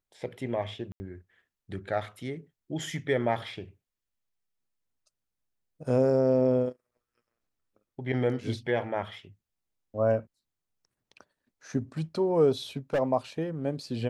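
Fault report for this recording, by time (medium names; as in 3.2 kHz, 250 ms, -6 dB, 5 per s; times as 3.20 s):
0.92–1.00 s: dropout 80 ms
12.77–13.00 s: clipped -22.5 dBFS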